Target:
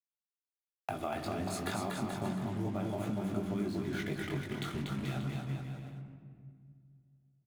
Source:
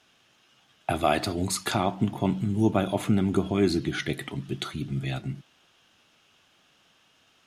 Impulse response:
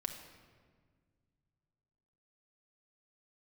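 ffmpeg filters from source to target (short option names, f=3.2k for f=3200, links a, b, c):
-filter_complex "[0:a]acrusher=bits=5:mix=0:aa=0.5,asplit=2[a][b];[b]lowpass=2.6k[c];[1:a]atrim=start_sample=2205[d];[c][d]afir=irnorm=-1:irlink=0,volume=-1.5dB[e];[a][e]amix=inputs=2:normalize=0,flanger=delay=19:depth=3.6:speed=2.2,acompressor=threshold=-37dB:ratio=4,aecho=1:1:240|432|585.6|708.5|806.8:0.631|0.398|0.251|0.158|0.1"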